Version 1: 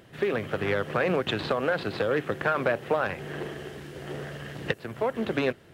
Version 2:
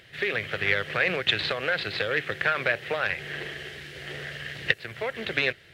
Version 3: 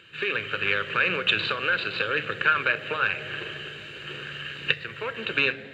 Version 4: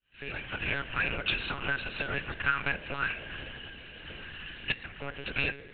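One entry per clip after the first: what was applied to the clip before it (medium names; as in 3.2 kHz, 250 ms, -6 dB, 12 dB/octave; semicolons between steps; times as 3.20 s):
graphic EQ 250/1000/2000/4000 Hz -10/-8/+11/+8 dB; trim -1 dB
flange 0.4 Hz, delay 5.8 ms, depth 4 ms, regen +86%; reverberation RT60 3.5 s, pre-delay 3 ms, DRR 16.5 dB
fade-in on the opening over 0.50 s; monotone LPC vocoder at 8 kHz 140 Hz; trim -6.5 dB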